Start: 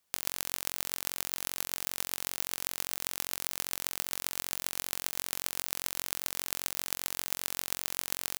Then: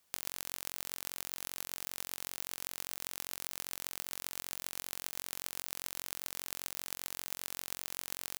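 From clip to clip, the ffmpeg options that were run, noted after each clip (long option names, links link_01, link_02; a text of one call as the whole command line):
ffmpeg -i in.wav -af "acompressor=threshold=-35dB:ratio=12,volume=3.5dB" out.wav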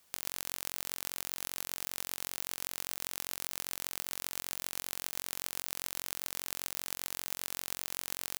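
ffmpeg -i in.wav -af "alimiter=limit=-13.5dB:level=0:latency=1:release=319,volume=6dB" out.wav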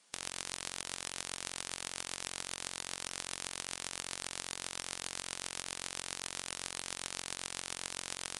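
ffmpeg -i in.wav -af "volume=1dB" -ar 22050 -c:a libvorbis -b:a 32k out.ogg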